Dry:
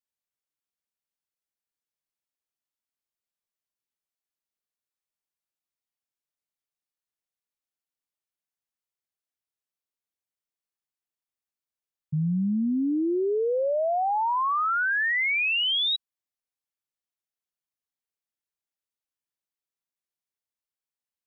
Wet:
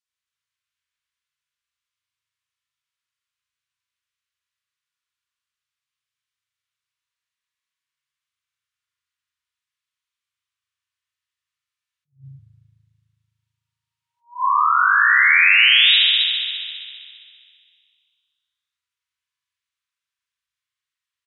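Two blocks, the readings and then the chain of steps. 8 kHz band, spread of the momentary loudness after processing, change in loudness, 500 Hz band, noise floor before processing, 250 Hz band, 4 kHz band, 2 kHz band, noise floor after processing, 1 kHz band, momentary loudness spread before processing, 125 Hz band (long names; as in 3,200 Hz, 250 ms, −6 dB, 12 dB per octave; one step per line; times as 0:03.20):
can't be measured, 16 LU, +11.5 dB, below −40 dB, below −85 dBFS, below −30 dB, +11.5 dB, +11.5 dB, below −85 dBFS, +6.0 dB, 4 LU, −15.5 dB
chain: high-shelf EQ 2,500 Hz +10 dB
brick-wall band-stop 140–940 Hz
high-pass filter 61 Hz
high-frequency loss of the air 60 metres
on a send: single-tap delay 270 ms −6 dB
on the sum: spring reverb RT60 2.2 s, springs 37 ms, chirp 35 ms, DRR −6.5 dB
level that may rise only so fast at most 230 dB per second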